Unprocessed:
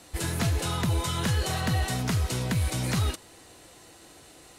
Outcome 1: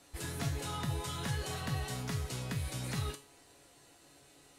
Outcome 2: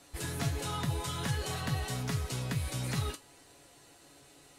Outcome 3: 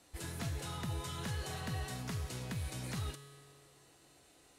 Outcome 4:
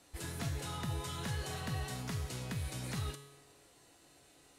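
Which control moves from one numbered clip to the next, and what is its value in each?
feedback comb, decay: 0.37 s, 0.15 s, 2.1 s, 1 s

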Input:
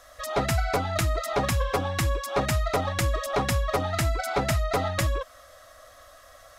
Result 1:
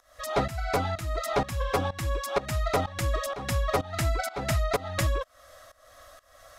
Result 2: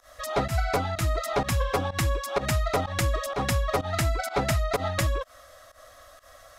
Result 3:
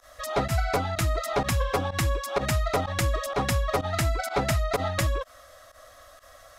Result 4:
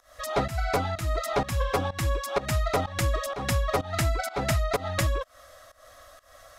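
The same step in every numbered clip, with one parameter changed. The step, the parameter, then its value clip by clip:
volume shaper, release: 412 ms, 110 ms, 69 ms, 243 ms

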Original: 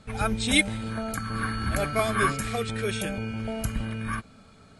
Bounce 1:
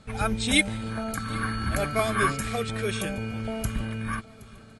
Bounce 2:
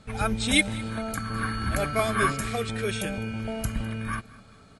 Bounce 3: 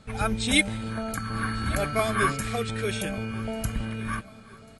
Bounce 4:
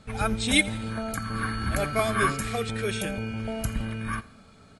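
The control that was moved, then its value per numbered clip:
feedback delay, time: 770 ms, 205 ms, 1144 ms, 84 ms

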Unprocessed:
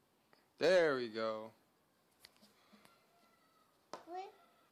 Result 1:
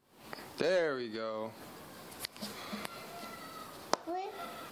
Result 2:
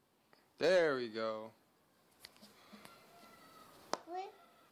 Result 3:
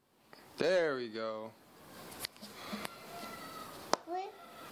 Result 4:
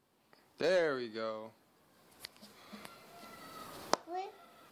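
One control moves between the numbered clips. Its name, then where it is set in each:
recorder AGC, rising by: 90 dB/s, 5.4 dB/s, 36 dB/s, 14 dB/s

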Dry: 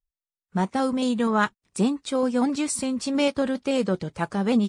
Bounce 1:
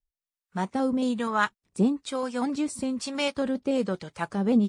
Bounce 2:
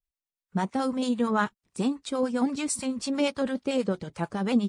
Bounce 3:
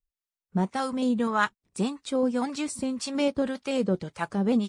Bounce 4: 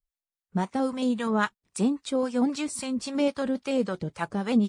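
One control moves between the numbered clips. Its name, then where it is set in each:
harmonic tremolo, rate: 1.1 Hz, 9 Hz, 1.8 Hz, 3.7 Hz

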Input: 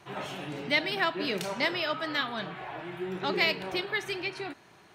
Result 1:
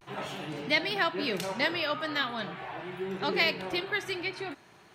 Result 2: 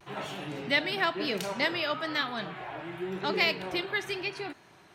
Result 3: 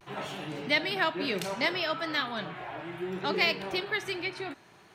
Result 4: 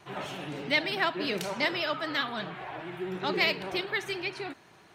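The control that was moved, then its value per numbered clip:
vibrato, rate: 0.43 Hz, 0.98 Hz, 0.64 Hz, 15 Hz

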